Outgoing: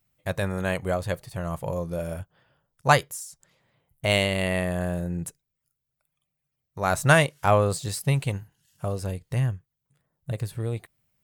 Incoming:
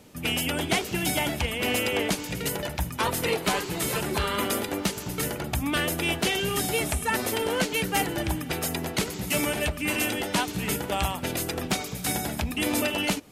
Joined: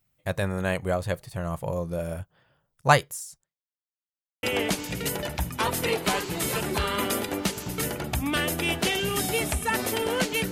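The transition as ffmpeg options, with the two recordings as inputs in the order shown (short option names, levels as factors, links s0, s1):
-filter_complex "[0:a]apad=whole_dur=10.51,atrim=end=10.51,asplit=2[s0][s1];[s0]atrim=end=3.83,asetpts=PTS-STARTPTS,afade=t=out:st=3.36:d=0.47:c=exp[s2];[s1]atrim=start=3.83:end=4.43,asetpts=PTS-STARTPTS,volume=0[s3];[1:a]atrim=start=1.83:end=7.91,asetpts=PTS-STARTPTS,afade=t=in:d=0.004:c=hsin[s4];[s2][s3][s4]concat=n=3:v=0:a=1"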